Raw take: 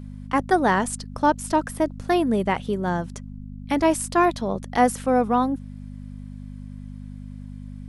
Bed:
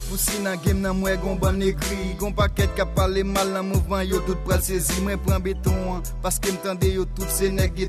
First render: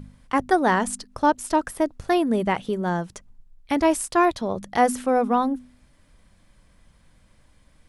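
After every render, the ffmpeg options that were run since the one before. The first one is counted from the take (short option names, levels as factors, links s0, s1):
-af "bandreject=f=50:t=h:w=4,bandreject=f=100:t=h:w=4,bandreject=f=150:t=h:w=4,bandreject=f=200:t=h:w=4,bandreject=f=250:t=h:w=4"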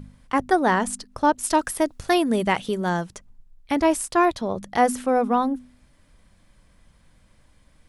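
-filter_complex "[0:a]asettb=1/sr,asplit=3[s0][s1][s2];[s0]atrim=end=1.434[s3];[s1]atrim=start=1.43:end=3.04,asetpts=PTS-STARTPTS,afade=t=in:d=0.004:c=qsin,afade=t=out:st=1.606:d=0.004:c=qsin,highshelf=f=2100:g=8.5[s4];[s2]atrim=start=3.036[s5];[s3][s4]acrossfade=d=0.004:c1=hsin:c2=qsin[s6];[s6][s5]acrossfade=d=0.004:c1=qsin:c2=hsin"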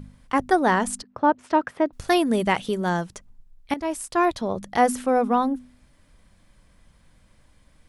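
-filter_complex "[0:a]asettb=1/sr,asplit=3[s0][s1][s2];[s0]atrim=end=1.024[s3];[s1]atrim=start=1.02:end=1.93,asetpts=PTS-STARTPTS,afade=t=in:d=0.004:c=qsin,afade=t=out:st=0.906:d=0.004:c=qsin,highpass=120,lowpass=2100[s4];[s2]atrim=start=1.926[s5];[s3][s4]acrossfade=d=0.004:c1=hsin:c2=qsin[s6];[s6][s5]acrossfade=d=0.004:c1=qsin:c2=hsin,asplit=2[s7][s8];[s7]atrim=end=3.74,asetpts=PTS-STARTPTS,afade=t=out:st=3.736:d=0.004:c=hsin:silence=0.223872[s9];[s8]atrim=start=3.74,asetpts=PTS-STARTPTS,afade=t=in:d=0.64:silence=0.223872[s10];[s9][s10]concat=n=2:v=0:a=1"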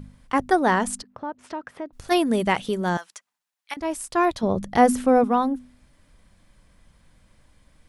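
-filter_complex "[0:a]asplit=3[s0][s1][s2];[s0]afade=t=out:st=1.08:d=0.02[s3];[s1]acompressor=threshold=0.0126:ratio=2:attack=3.2:release=140:knee=1:detection=peak,afade=t=in:st=1.08:d=0.02,afade=t=out:st=2.1:d=0.02[s4];[s2]afade=t=in:st=2.1:d=0.02[s5];[s3][s4][s5]amix=inputs=3:normalize=0,asettb=1/sr,asplit=3[s6][s7][s8];[s6]atrim=end=2.974[s9];[s7]atrim=start=2.97:end=3.77,asetpts=PTS-STARTPTS,afade=t=in:d=0.004:c=qsin,afade=t=out:st=0.796:d=0.004:c=qsin,highpass=1200[s10];[s8]atrim=start=3.766[s11];[s9][s10]acrossfade=d=0.004:c1=hsin:c2=qsin[s12];[s12][s11]acrossfade=d=0.004:c1=qsin:c2=hsin,asettb=1/sr,asplit=3[s13][s14][s15];[s13]atrim=end=4.434[s16];[s14]atrim=start=4.43:end=5.24,asetpts=PTS-STARTPTS,afade=t=in:d=0.004:c=qsin,afade=t=out:st=0.806:d=0.004:c=qsin,lowshelf=f=400:g=8[s17];[s15]atrim=start=5.236[s18];[s16][s17]acrossfade=d=0.004:c1=hsin:c2=qsin[s19];[s19][s18]acrossfade=d=0.004:c1=qsin:c2=hsin"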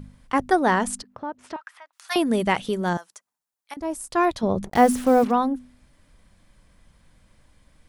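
-filter_complex "[0:a]asettb=1/sr,asplit=3[s0][s1][s2];[s0]atrim=end=1.564[s3];[s1]atrim=start=1.56:end=2.16,asetpts=PTS-STARTPTS,afade=t=in:d=0.004:c=qsin,afade=t=out:st=0.596:d=0.004:c=qsin,highpass=f=1000:w=0.5412,highpass=f=1000:w=1.3066[s4];[s2]atrim=start=2.156[s5];[s3][s4]acrossfade=d=0.004:c1=hsin:c2=qsin[s6];[s6][s5]acrossfade=d=0.004:c1=qsin:c2=hsin,asettb=1/sr,asplit=3[s7][s8][s9];[s7]atrim=end=2.934[s10];[s8]atrim=start=2.93:end=4.11,asetpts=PTS-STARTPTS,afade=t=in:d=0.004:c=qsin,afade=t=out:st=1.176:d=0.004:c=qsin,equalizer=f=2600:w=0.59:g=-9[s11];[s9]atrim=start=4.106[s12];[s10][s11]acrossfade=d=0.004:c1=hsin:c2=qsin[s13];[s13][s12]acrossfade=d=0.004:c1=qsin:c2=hsin,asplit=3[s14][s15][s16];[s14]afade=t=out:st=4.64:d=0.02[s17];[s15]acrusher=bits=5:mix=0:aa=0.5,afade=t=in:st=4.64:d=0.02,afade=t=out:st=5.3:d=0.02[s18];[s16]afade=t=in:st=5.3:d=0.02[s19];[s17][s18][s19]amix=inputs=3:normalize=0"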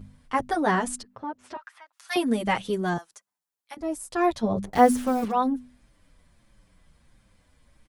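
-filter_complex "[0:a]asplit=2[s0][s1];[s1]adelay=7.4,afreqshift=-1.5[s2];[s0][s2]amix=inputs=2:normalize=1"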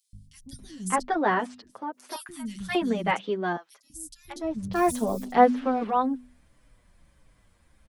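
-filter_complex "[0:a]acrossover=split=190|4200[s0][s1][s2];[s0]adelay=130[s3];[s1]adelay=590[s4];[s3][s4][s2]amix=inputs=3:normalize=0"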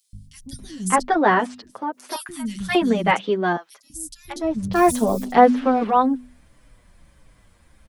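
-af "volume=2.24,alimiter=limit=0.891:level=0:latency=1"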